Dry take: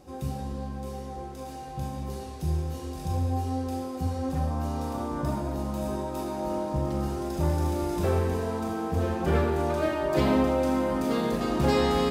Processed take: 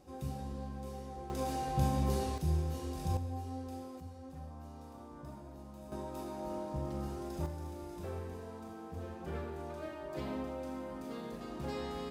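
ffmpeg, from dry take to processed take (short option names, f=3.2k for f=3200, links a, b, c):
-af "asetnsamples=n=441:p=0,asendcmd='1.3 volume volume 3dB;2.38 volume volume -4dB;3.17 volume volume -12dB;4 volume volume -19dB;5.92 volume volume -10dB;7.46 volume volume -16.5dB',volume=-7.5dB"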